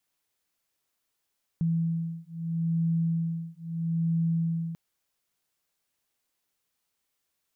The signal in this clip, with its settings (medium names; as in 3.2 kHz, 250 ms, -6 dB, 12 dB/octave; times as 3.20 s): beating tones 165 Hz, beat 0.77 Hz, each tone -28.5 dBFS 3.14 s